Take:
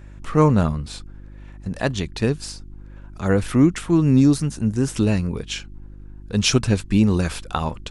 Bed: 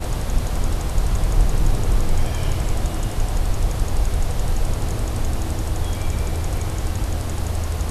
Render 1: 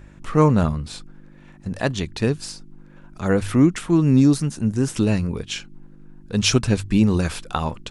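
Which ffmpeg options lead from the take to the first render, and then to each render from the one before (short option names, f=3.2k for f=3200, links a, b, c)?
-af "bandreject=f=50:t=h:w=4,bandreject=f=100:t=h:w=4"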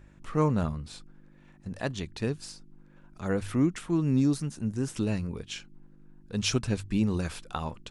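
-af "volume=-9.5dB"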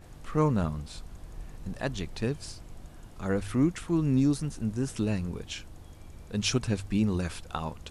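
-filter_complex "[1:a]volume=-25.5dB[a];[0:a][a]amix=inputs=2:normalize=0"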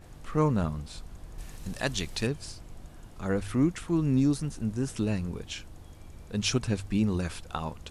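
-filter_complex "[0:a]asettb=1/sr,asplit=3[a][b][c];[a]atrim=end=1.384[d];[b]atrim=start=1.38:end=2.27,asetpts=PTS-STARTPTS,afade=t=in:d=0.004:c=qsin,afade=t=out:st=0.886:d=0.004:c=qsin,highshelf=f=2.1k:g=11[e];[c]atrim=start=2.266[f];[d][e]acrossfade=d=0.004:c1=hsin:c2=qsin[g];[g][f]acrossfade=d=0.004:c1=qsin:c2=hsin"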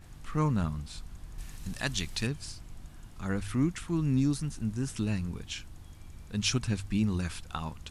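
-af "equalizer=f=510:w=1:g=-9"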